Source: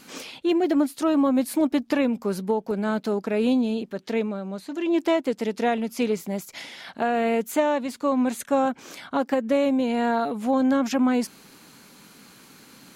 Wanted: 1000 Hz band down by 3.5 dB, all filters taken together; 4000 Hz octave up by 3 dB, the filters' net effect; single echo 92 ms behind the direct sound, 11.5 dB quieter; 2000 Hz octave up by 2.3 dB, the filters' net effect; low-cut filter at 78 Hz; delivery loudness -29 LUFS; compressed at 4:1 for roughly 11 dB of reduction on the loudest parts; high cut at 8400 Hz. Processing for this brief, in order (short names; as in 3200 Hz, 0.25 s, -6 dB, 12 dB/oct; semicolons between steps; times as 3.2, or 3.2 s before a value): HPF 78 Hz; LPF 8400 Hz; bell 1000 Hz -6 dB; bell 2000 Hz +4 dB; bell 4000 Hz +3 dB; compressor 4:1, threshold -32 dBFS; echo 92 ms -11.5 dB; gain +5 dB